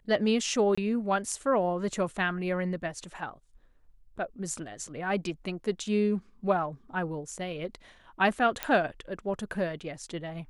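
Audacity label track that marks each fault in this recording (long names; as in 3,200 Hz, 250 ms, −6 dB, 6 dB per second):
0.750000	0.780000	drop-out 25 ms
8.630000	8.630000	click −12 dBFS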